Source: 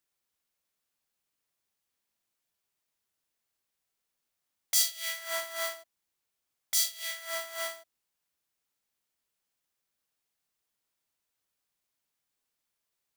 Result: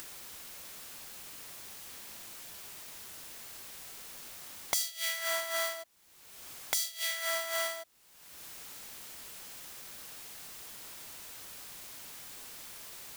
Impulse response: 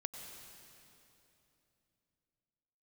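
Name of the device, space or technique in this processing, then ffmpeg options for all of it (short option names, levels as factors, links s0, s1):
upward and downward compression: -af "acompressor=mode=upward:threshold=0.0282:ratio=2.5,acompressor=threshold=0.0141:ratio=6,volume=2.37"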